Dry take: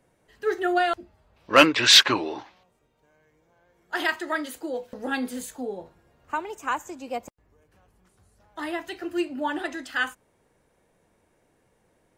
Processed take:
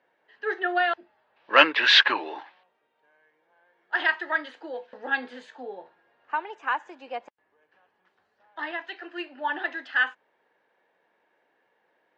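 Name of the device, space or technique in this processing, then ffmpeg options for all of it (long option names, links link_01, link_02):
phone earpiece: -filter_complex "[0:a]highpass=410,equalizer=frequency=870:width_type=q:width=4:gain=5,equalizer=frequency=1700:width_type=q:width=4:gain=9,equalizer=frequency=2900:width_type=q:width=4:gain=3,lowpass=frequency=4100:width=0.5412,lowpass=frequency=4100:width=1.3066,asettb=1/sr,asplit=3[link_01][link_02][link_03];[link_01]atrim=end=8.714[link_04];[link_02]atrim=start=8.71:end=9.5,asetpts=PTS-STARTPTS,afade=type=in:duration=0.004:curve=qsin,afade=type=out:start_time=0.786:duration=0.004:curve=qsin,lowshelf=frequency=430:gain=-5.5[link_05];[link_03]atrim=start=9.496[link_06];[link_04][link_05]acrossfade=duration=0.004:curve1=hsin:curve2=qsin[link_07];[link_07][link_06]acrossfade=duration=0.004:curve1=qsin:curve2=hsin,volume=-3dB"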